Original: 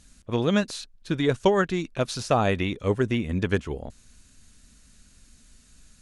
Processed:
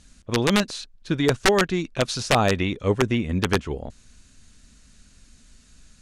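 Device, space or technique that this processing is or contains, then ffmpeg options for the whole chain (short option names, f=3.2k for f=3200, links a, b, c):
overflowing digital effects unit: -filter_complex "[0:a]asplit=3[a][b][c];[a]afade=t=out:st=1.94:d=0.02[d];[b]highshelf=f=2.8k:g=3.5,afade=t=in:st=1.94:d=0.02,afade=t=out:st=2.48:d=0.02[e];[c]afade=t=in:st=2.48:d=0.02[f];[d][e][f]amix=inputs=3:normalize=0,aeval=exprs='(mod(3.98*val(0)+1,2)-1)/3.98':c=same,lowpass=8.3k,volume=2.5dB"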